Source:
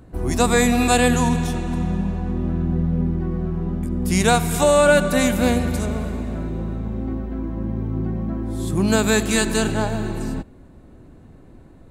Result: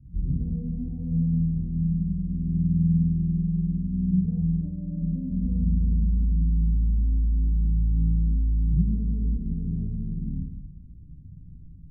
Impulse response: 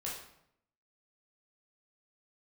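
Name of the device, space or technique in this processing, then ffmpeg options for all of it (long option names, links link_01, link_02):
club heard from the street: -filter_complex "[0:a]alimiter=limit=-12dB:level=0:latency=1:release=43,lowpass=frequency=180:width=0.5412,lowpass=frequency=180:width=1.3066[link_01];[1:a]atrim=start_sample=2205[link_02];[link_01][link_02]afir=irnorm=-1:irlink=0,volume=1.5dB"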